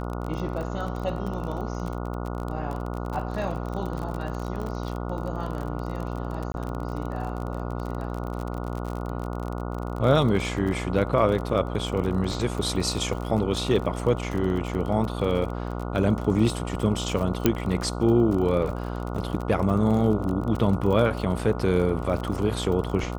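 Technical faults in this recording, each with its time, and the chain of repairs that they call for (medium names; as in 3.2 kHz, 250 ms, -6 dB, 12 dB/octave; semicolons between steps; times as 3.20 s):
buzz 60 Hz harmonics 24 -31 dBFS
crackle 36 per s -30 dBFS
6.52–6.54 s: dropout 21 ms
17.46 s: pop -5 dBFS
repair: de-click; de-hum 60 Hz, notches 24; interpolate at 6.52 s, 21 ms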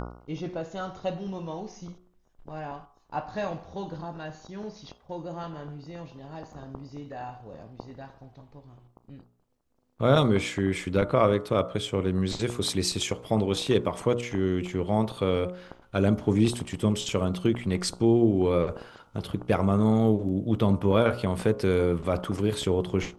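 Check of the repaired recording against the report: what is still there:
17.46 s: pop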